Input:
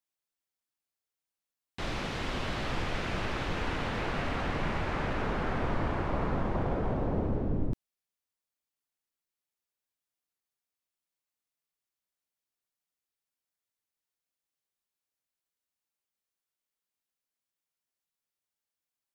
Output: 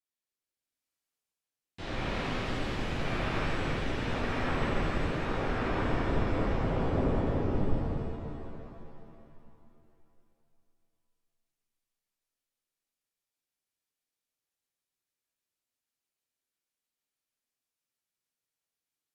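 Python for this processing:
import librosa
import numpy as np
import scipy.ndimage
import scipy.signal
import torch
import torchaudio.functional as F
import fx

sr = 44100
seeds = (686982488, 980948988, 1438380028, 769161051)

y = fx.rotary_switch(x, sr, hz=0.85, then_hz=6.3, switch_at_s=6.17)
y = fx.env_lowpass_down(y, sr, base_hz=2700.0, full_db=-30.0)
y = fx.rev_shimmer(y, sr, seeds[0], rt60_s=2.8, semitones=7, shimmer_db=-8, drr_db=-8.5)
y = y * 10.0 ** (-6.0 / 20.0)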